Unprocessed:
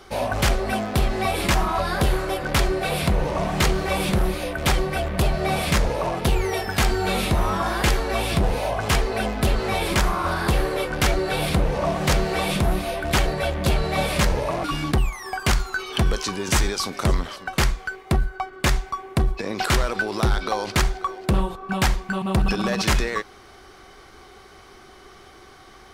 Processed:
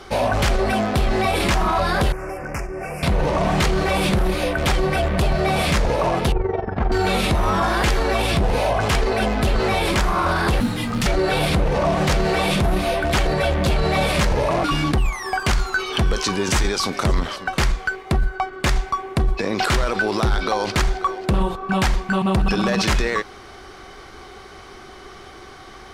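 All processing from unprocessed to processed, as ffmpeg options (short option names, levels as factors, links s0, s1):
-filter_complex "[0:a]asettb=1/sr,asplit=3[s0][s1][s2];[s0]atrim=end=2.124[s3];[s1]atrim=start=2.12:end=3.03,asetpts=PTS-STARTPTS,afade=t=in:d=0.004:c=qsin,afade=t=out:st=0.906:d=0.004:c=qsin,agate=range=0.398:threshold=0.1:ratio=16:release=100:detection=peak,acompressor=threshold=0.0282:ratio=5:attack=3.2:release=140:knee=1:detection=peak,asuperstop=centerf=3700:order=8:qfactor=1.5[s4];[s2]atrim=start=3.026[s5];[s3][s4]acrossfade=d=0.004:c1=hsin:c2=qsin[s6];[s6][s5]acrossfade=d=0.004:c1=qsin:c2=hsin,asettb=1/sr,asplit=3[s7][s8][s9];[s7]atrim=end=6.324[s10];[s8]atrim=start=6.32:end=6.92,asetpts=PTS-STARTPTS,afade=t=in:d=0.004:c=qsin,afade=t=out:st=0.596:d=0.004:c=qsin,lowpass=1000,tremolo=f=22:d=0.75[s11];[s9]atrim=start=6.916[s12];[s10][s11]acrossfade=d=0.004:c1=hsin:c2=qsin[s13];[s13][s12]acrossfade=d=0.004:c1=qsin:c2=hsin,asettb=1/sr,asplit=3[s14][s15][s16];[s14]atrim=end=10.604[s17];[s15]atrim=start=10.6:end=11.06,asetpts=PTS-STARTPTS,afade=t=in:d=0.004:c=qsin,afade=t=out:st=0.456:d=0.004:c=qsin,acrossover=split=180|3000[s18][s19][s20];[s19]acompressor=threshold=0.0282:ratio=4:attack=3.2:release=140:knee=2.83:detection=peak[s21];[s18][s21][s20]amix=inputs=3:normalize=0,afreqshift=-270,acrusher=bits=6:mode=log:mix=0:aa=0.000001[s22];[s16]atrim=start=11.056[s23];[s17][s22]acrossfade=d=0.004:c1=hsin:c2=qsin[s24];[s24][s23]acrossfade=d=0.004:c1=qsin:c2=hsin,highshelf=f=12000:g=-11.5,alimiter=limit=0.126:level=0:latency=1:release=15,volume=2.11"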